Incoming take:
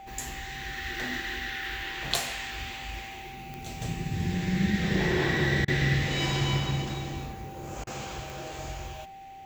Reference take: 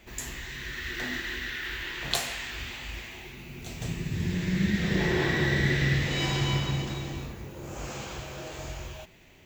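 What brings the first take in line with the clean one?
de-click; band-stop 780 Hz, Q 30; interpolate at 5.65/7.84 s, 28 ms

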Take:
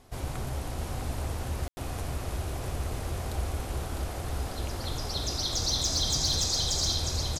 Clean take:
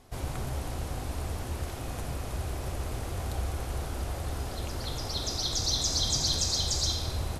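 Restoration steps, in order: clip repair -19.5 dBFS; room tone fill 1.68–1.77 s; inverse comb 654 ms -6 dB

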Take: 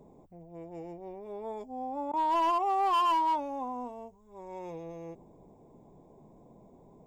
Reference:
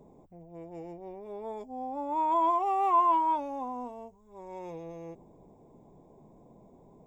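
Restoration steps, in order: clip repair -23.5 dBFS; interpolate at 2.12 s, 13 ms

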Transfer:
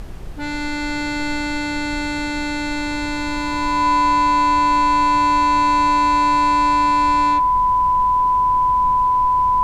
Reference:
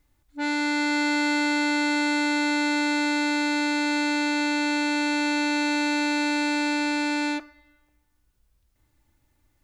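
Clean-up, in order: band-stop 1 kHz, Q 30; de-plosive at 1.88/7.52 s; noise print and reduce 30 dB; trim 0 dB, from 7.70 s +7.5 dB

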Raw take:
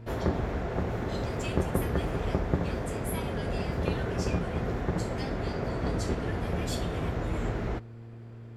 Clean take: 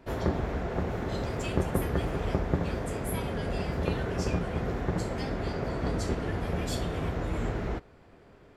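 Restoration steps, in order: de-hum 115.1 Hz, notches 4

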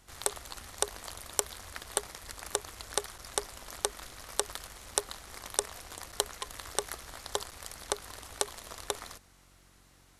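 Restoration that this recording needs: de-hum 45.9 Hz, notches 8; interpolate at 3.18/6.12/7.51 s, 7 ms

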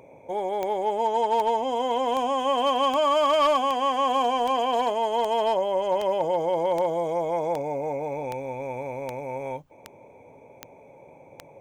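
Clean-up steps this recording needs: clip repair -15.5 dBFS; de-click

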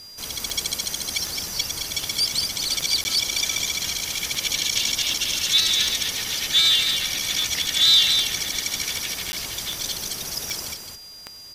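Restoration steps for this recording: de-click; band-stop 4.8 kHz, Q 30; interpolate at 3.04/9.32 s, 10 ms; inverse comb 215 ms -6 dB

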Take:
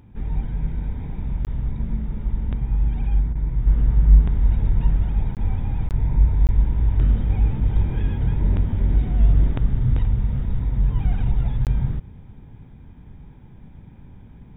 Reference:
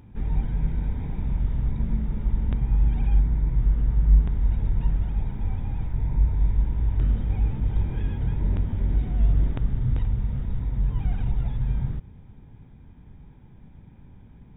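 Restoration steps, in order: interpolate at 1.45/5.35/5.89/6.47/11.65 s, 18 ms; interpolate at 3.33 s, 22 ms; gain correction -4.5 dB, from 3.67 s

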